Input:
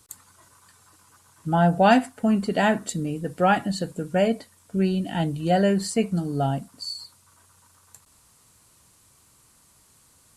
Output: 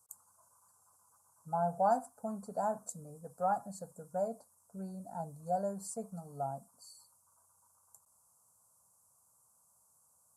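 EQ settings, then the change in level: high-pass 400 Hz 6 dB/octave; Butterworth band-stop 3.1 kHz, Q 0.55; static phaser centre 810 Hz, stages 4; -8.5 dB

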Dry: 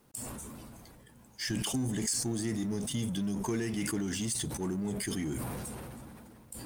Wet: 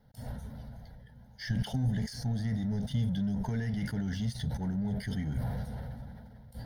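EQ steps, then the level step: low-pass 3.2 kHz 6 dB/octave; bass shelf 260 Hz +10 dB; static phaser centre 1.7 kHz, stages 8; 0.0 dB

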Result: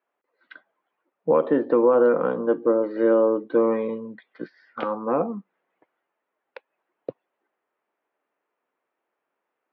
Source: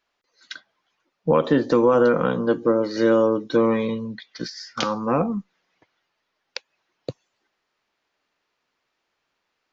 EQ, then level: band-pass 390–3200 Hz; distance through air 490 m; tilt shelf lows +4.5 dB, about 780 Hz; +1.0 dB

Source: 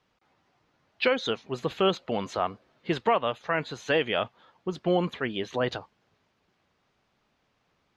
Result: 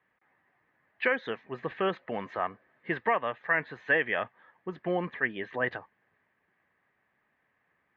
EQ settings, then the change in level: high-pass 110 Hz 6 dB/octave; resonant low-pass 1.8 kHz, resonance Q 5; band-stop 1.4 kHz, Q 7.6; -5.5 dB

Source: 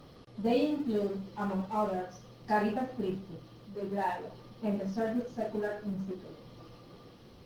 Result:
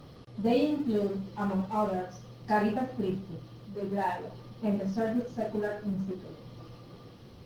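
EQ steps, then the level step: peaking EQ 110 Hz +5.5 dB 1.3 oct; +1.5 dB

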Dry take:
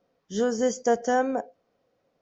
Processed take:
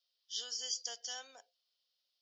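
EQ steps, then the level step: high-pass 820 Hz 6 dB/octave; differentiator; high-order bell 3.9 kHz +16 dB 1.1 oct; -5.0 dB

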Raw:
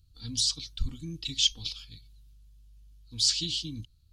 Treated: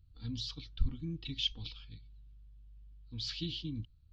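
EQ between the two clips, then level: distance through air 170 m; tape spacing loss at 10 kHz 34 dB; treble shelf 2.1 kHz +9 dB; 0.0 dB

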